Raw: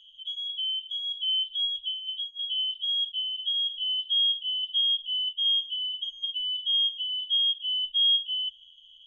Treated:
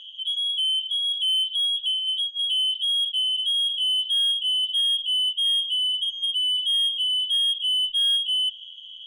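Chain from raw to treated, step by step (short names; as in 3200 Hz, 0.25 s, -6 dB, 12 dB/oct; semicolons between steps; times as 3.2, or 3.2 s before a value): overdrive pedal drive 18 dB, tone 1300 Hz, clips at -17 dBFS; de-hum 47.87 Hz, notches 12; gain +7.5 dB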